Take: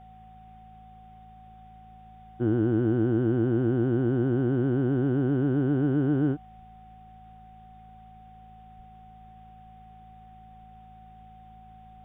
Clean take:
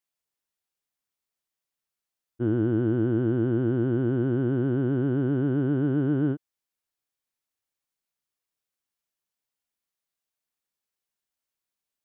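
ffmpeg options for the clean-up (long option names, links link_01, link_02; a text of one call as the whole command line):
ffmpeg -i in.wav -filter_complex "[0:a]bandreject=frequency=54.6:width_type=h:width=4,bandreject=frequency=109.2:width_type=h:width=4,bandreject=frequency=163.8:width_type=h:width=4,bandreject=frequency=218.4:width_type=h:width=4,bandreject=frequency=750:width=30,asplit=3[link_01][link_02][link_03];[link_01]afade=type=out:start_time=6.57:duration=0.02[link_04];[link_02]highpass=frequency=140:width=0.5412,highpass=frequency=140:width=1.3066,afade=type=in:start_time=6.57:duration=0.02,afade=type=out:start_time=6.69:duration=0.02[link_05];[link_03]afade=type=in:start_time=6.69:duration=0.02[link_06];[link_04][link_05][link_06]amix=inputs=3:normalize=0,asplit=3[link_07][link_08][link_09];[link_07]afade=type=out:start_time=8.76:duration=0.02[link_10];[link_08]highpass=frequency=140:width=0.5412,highpass=frequency=140:width=1.3066,afade=type=in:start_time=8.76:duration=0.02,afade=type=out:start_time=8.88:duration=0.02[link_11];[link_09]afade=type=in:start_time=8.88:duration=0.02[link_12];[link_10][link_11][link_12]amix=inputs=3:normalize=0,agate=range=-21dB:threshold=-42dB" out.wav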